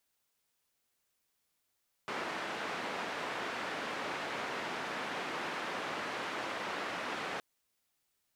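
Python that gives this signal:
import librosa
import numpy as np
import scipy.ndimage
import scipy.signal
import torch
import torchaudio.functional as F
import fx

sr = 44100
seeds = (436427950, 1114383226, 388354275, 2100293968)

y = fx.band_noise(sr, seeds[0], length_s=5.32, low_hz=230.0, high_hz=1800.0, level_db=-38.5)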